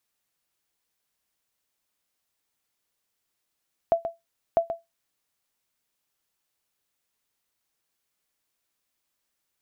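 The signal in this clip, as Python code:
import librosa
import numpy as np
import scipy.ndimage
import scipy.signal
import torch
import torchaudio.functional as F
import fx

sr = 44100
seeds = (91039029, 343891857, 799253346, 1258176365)

y = fx.sonar_ping(sr, hz=671.0, decay_s=0.18, every_s=0.65, pings=2, echo_s=0.13, echo_db=-9.5, level_db=-12.0)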